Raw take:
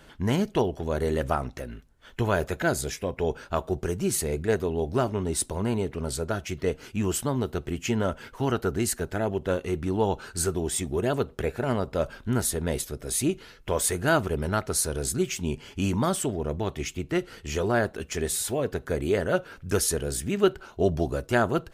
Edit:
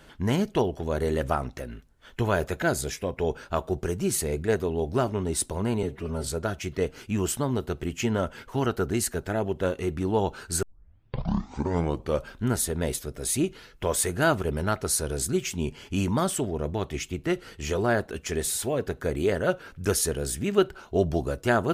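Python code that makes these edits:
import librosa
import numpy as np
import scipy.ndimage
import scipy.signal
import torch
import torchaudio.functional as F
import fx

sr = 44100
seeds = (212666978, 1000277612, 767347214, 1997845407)

y = fx.edit(x, sr, fx.stretch_span(start_s=5.83, length_s=0.29, factor=1.5),
    fx.tape_start(start_s=10.48, length_s=1.66), tone=tone)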